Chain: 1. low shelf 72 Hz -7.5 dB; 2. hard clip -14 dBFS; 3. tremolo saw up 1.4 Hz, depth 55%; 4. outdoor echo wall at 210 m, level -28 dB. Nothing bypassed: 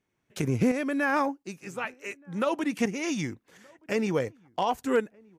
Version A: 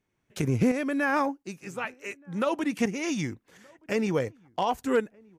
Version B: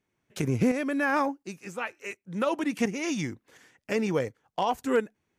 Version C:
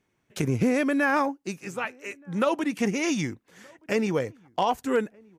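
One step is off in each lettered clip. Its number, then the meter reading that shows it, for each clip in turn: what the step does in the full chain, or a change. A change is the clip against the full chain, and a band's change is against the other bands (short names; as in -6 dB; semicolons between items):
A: 1, 125 Hz band +1.5 dB; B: 4, echo-to-direct -32.0 dB to none; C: 3, loudness change +2.0 LU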